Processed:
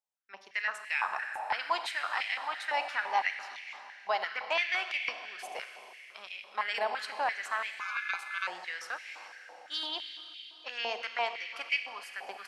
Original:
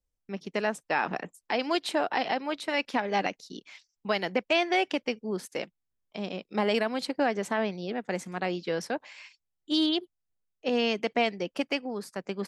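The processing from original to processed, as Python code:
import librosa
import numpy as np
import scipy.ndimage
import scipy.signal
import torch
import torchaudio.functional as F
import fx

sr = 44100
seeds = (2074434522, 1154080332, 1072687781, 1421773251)

y = fx.rev_schroeder(x, sr, rt60_s=3.6, comb_ms=30, drr_db=6.0)
y = fx.ring_mod(y, sr, carrier_hz=1900.0, at=(7.8, 8.47))
y = fx.filter_held_highpass(y, sr, hz=5.9, low_hz=810.0, high_hz=2200.0)
y = F.gain(torch.from_numpy(y), -6.5).numpy()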